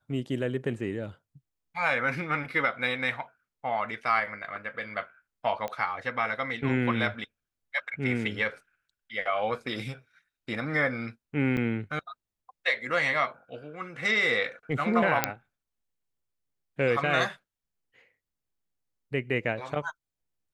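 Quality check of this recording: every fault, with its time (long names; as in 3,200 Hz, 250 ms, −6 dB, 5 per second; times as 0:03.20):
0:05.68: click −21 dBFS
0:11.57: drop-out 5 ms
0:15.24: click −5 dBFS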